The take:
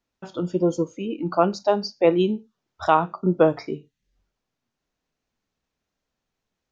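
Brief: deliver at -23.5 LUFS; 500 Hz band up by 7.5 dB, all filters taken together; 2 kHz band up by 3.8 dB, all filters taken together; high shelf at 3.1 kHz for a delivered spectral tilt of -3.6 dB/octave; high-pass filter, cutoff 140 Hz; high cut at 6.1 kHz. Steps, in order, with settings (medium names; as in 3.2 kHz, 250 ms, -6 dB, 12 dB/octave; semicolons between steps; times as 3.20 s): high-pass 140 Hz; low-pass 6.1 kHz; peaking EQ 500 Hz +9 dB; peaking EQ 2 kHz +8 dB; treble shelf 3.1 kHz -8 dB; trim -7 dB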